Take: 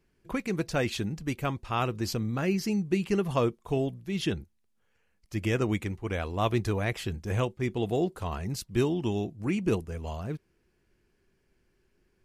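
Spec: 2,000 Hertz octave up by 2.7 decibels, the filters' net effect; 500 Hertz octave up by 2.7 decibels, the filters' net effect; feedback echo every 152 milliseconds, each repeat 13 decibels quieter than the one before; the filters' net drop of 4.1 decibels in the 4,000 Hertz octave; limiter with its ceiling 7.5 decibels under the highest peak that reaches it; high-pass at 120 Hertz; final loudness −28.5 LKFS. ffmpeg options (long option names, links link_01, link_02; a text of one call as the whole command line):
ffmpeg -i in.wav -af "highpass=120,equalizer=frequency=500:width_type=o:gain=3.5,equalizer=frequency=2000:width_type=o:gain=5.5,equalizer=frequency=4000:width_type=o:gain=-8,alimiter=limit=-18dB:level=0:latency=1,aecho=1:1:152|304|456:0.224|0.0493|0.0108,volume=2.5dB" out.wav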